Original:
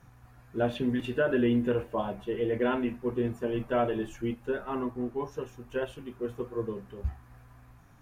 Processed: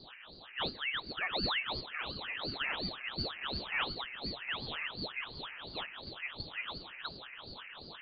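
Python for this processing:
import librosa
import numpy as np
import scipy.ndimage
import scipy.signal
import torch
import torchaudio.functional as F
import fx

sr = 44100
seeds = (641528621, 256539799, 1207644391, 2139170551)

p1 = fx.pitch_ramps(x, sr, semitones=4.0, every_ms=729)
p2 = fx.low_shelf(p1, sr, hz=69.0, db=-12.0)
p3 = fx.notch_comb(p2, sr, f0_hz=170.0)
p4 = fx.dmg_noise_band(p3, sr, seeds[0], low_hz=73.0, high_hz=850.0, level_db=-46.0)
p5 = p4 + fx.echo_diffused(p4, sr, ms=940, feedback_pct=52, wet_db=-9.0, dry=0)
p6 = fx.freq_invert(p5, sr, carrier_hz=2700)
p7 = fx.ring_lfo(p6, sr, carrier_hz=1200.0, swing_pct=85, hz=2.8)
y = F.gain(torch.from_numpy(p7), -4.0).numpy()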